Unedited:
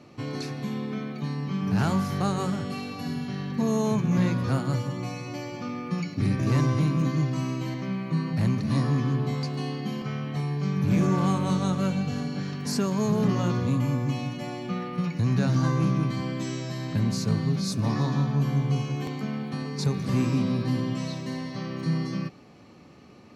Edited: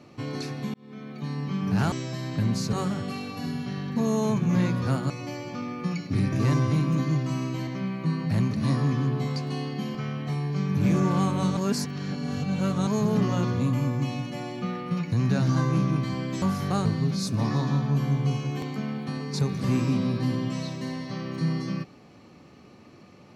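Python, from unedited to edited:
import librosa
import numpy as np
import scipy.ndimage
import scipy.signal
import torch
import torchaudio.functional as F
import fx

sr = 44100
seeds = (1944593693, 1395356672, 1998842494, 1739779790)

y = fx.edit(x, sr, fx.fade_in_span(start_s=0.74, length_s=0.64),
    fx.swap(start_s=1.92, length_s=0.43, other_s=16.49, other_length_s=0.81),
    fx.cut(start_s=4.72, length_s=0.45),
    fx.reverse_span(start_s=11.64, length_s=1.3), tone=tone)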